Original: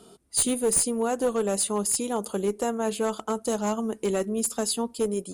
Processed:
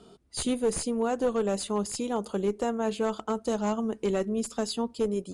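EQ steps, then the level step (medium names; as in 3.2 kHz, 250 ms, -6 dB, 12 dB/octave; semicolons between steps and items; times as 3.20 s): low-pass 5.6 kHz 12 dB/octave; bass shelf 120 Hz +6.5 dB; -2.0 dB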